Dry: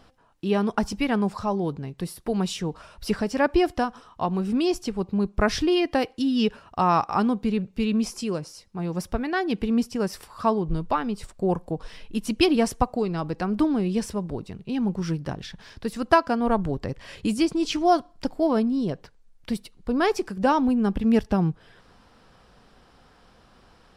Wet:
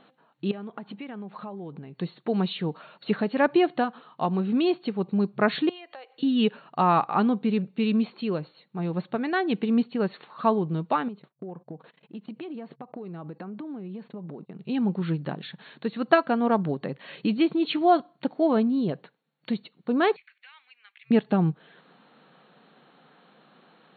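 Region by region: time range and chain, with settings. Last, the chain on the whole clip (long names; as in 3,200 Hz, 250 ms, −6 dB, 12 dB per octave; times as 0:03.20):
0:00.51–0:01.97: low-pass filter 3,600 Hz 24 dB per octave + downward compressor 8 to 1, threshold −34 dBFS
0:05.69–0:06.23: high-pass filter 500 Hz 24 dB per octave + downward compressor 5 to 1, threshold −42 dBFS
0:11.08–0:14.59: low-pass filter 1,600 Hz 6 dB per octave + noise gate −41 dBFS, range −27 dB + downward compressor 16 to 1, threshold −33 dBFS
0:20.16–0:21.11: four-pole ladder high-pass 2,000 Hz, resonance 70% + downward compressor 12 to 1, threshold −45 dBFS
whole clip: notch filter 1,000 Hz, Q 22; brick-wall band-pass 130–4,400 Hz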